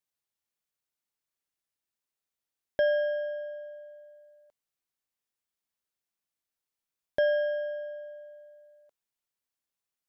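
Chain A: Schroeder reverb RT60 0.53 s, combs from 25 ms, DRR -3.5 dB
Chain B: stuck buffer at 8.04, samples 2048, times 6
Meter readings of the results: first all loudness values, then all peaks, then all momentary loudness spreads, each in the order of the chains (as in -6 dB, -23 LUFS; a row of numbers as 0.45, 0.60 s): -30.0, -30.5 LUFS; -15.5, -16.5 dBFS; 20, 19 LU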